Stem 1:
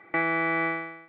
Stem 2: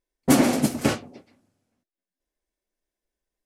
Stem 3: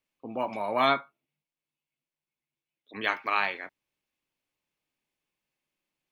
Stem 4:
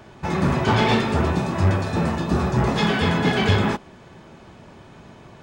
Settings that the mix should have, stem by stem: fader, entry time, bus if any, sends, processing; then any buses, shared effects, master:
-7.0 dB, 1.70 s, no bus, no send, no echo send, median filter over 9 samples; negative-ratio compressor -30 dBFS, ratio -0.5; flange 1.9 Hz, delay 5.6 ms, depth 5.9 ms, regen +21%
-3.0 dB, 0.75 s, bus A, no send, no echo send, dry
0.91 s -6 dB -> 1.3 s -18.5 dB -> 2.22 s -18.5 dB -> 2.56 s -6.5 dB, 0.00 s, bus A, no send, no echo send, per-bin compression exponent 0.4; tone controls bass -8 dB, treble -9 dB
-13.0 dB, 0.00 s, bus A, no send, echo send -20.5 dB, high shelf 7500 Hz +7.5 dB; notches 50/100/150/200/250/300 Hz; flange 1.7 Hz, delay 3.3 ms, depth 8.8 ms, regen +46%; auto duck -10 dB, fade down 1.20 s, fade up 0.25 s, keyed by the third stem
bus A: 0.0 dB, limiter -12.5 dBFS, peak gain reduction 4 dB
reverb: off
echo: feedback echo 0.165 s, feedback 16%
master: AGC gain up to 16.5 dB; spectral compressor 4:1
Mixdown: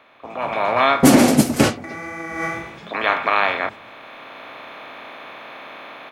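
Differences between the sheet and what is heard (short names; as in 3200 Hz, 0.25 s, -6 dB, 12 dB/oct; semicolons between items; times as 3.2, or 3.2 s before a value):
stem 4 -13.0 dB -> -21.5 dB; master: missing spectral compressor 4:1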